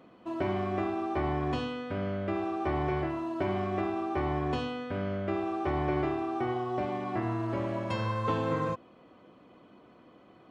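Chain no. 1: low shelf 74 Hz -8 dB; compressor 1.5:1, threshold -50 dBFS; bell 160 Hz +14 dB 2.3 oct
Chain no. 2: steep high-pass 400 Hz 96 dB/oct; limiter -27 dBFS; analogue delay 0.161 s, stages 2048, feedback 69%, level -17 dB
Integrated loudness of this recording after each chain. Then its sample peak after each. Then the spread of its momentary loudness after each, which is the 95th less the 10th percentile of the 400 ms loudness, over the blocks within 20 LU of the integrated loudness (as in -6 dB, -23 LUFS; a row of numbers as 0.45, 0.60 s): -32.5, -37.0 LUFS; -19.0, -26.0 dBFS; 18, 3 LU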